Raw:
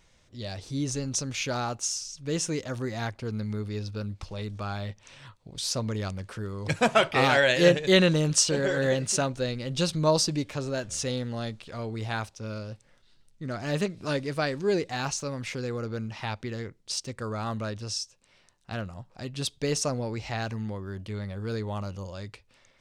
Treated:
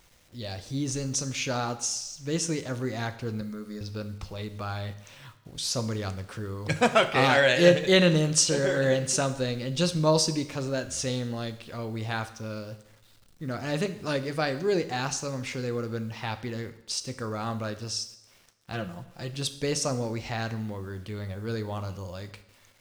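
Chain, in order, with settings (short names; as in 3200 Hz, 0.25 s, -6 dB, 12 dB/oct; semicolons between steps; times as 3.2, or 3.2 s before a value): 3.41–3.81 fixed phaser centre 550 Hz, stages 8; 18.72–19.36 comb 5.9 ms, depth 66%; requantised 10-bit, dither none; two-slope reverb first 0.72 s, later 2.6 s, from -26 dB, DRR 9.5 dB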